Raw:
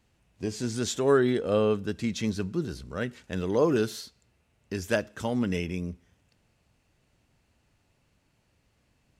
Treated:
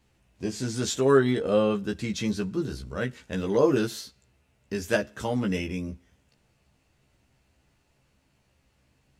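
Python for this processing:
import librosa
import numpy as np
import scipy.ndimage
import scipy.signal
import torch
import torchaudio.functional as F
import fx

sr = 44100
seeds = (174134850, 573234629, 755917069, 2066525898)

y = fx.doubler(x, sr, ms=15.0, db=-3)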